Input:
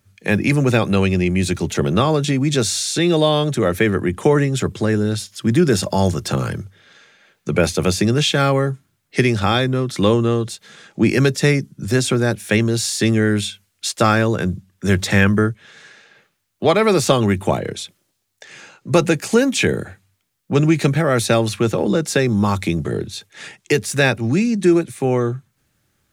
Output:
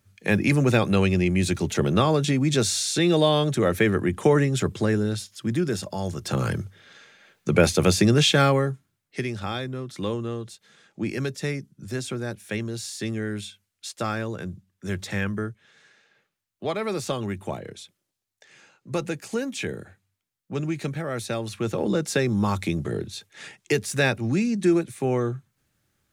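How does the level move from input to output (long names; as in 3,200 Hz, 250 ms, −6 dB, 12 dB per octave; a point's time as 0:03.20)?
0:04.83 −4 dB
0:06.03 −13 dB
0:06.50 −1.5 dB
0:08.38 −1.5 dB
0:09.21 −13 dB
0:21.41 −13 dB
0:21.85 −6 dB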